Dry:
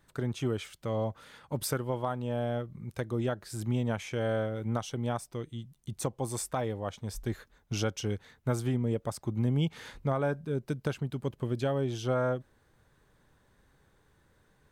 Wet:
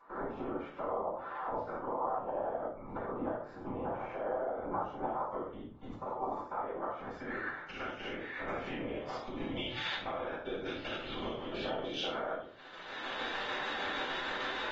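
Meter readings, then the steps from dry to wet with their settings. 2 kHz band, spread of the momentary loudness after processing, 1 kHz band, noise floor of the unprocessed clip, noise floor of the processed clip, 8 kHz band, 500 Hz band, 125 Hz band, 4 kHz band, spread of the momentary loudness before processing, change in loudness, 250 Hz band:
+4.5 dB, 6 LU, +3.0 dB, -68 dBFS, -49 dBFS, under -15 dB, -4.0 dB, -19.0 dB, +3.5 dB, 8 LU, -5.0 dB, -8.0 dB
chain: stepped spectrum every 0.1 s; recorder AGC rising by 29 dB/s; HPF 600 Hz 12 dB/oct; compressor 6:1, threshold -47 dBFS, peak gain reduction 16.5 dB; low-pass sweep 1000 Hz -> 3400 Hz, 6.21–9.43; whisperiser; tremolo saw down 6.6 Hz, depth 40%; shoebox room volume 300 m³, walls furnished, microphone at 7.4 m; AAC 24 kbps 44100 Hz

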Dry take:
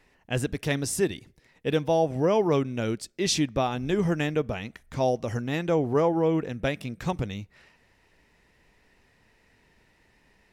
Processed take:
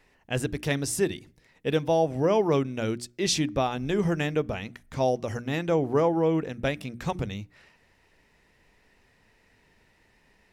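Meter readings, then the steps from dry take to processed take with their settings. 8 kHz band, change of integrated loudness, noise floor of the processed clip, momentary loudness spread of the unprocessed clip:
0.0 dB, -0.5 dB, -64 dBFS, 9 LU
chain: notches 60/120/180/240/300/360 Hz

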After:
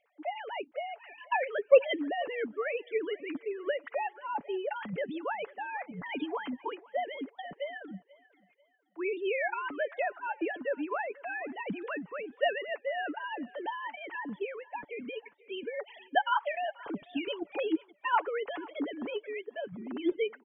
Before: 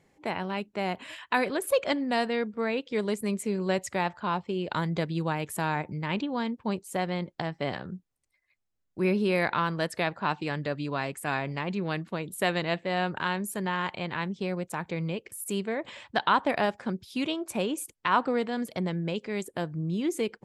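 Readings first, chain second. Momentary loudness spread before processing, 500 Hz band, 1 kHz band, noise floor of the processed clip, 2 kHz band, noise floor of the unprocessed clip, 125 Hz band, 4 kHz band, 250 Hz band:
7 LU, -1.5 dB, -4.0 dB, -67 dBFS, -4.0 dB, -77 dBFS, -20.5 dB, -7.0 dB, -8.0 dB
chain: sine-wave speech; harmonic-percussive split harmonic -7 dB; comb 7 ms, depth 33%; on a send: thinning echo 0.49 s, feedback 36%, high-pass 270 Hz, level -21.5 dB

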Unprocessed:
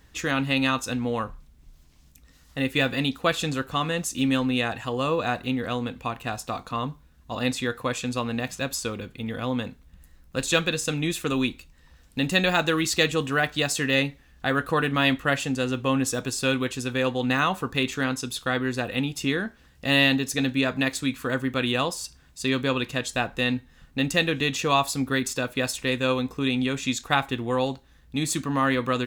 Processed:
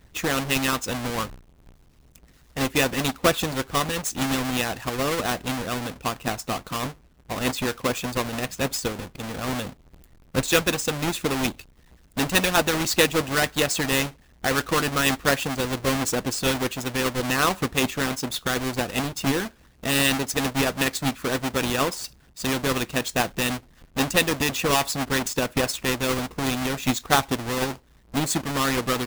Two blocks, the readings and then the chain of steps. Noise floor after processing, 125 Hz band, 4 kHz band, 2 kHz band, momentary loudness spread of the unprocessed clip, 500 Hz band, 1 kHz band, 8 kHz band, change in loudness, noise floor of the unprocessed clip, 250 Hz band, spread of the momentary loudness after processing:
-56 dBFS, 0.0 dB, +1.5 dB, +0.5 dB, 9 LU, +1.0 dB, +1.5 dB, +5.0 dB, +1.0 dB, -56 dBFS, -1.0 dB, 9 LU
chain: half-waves squared off; harmonic-percussive split harmonic -8 dB

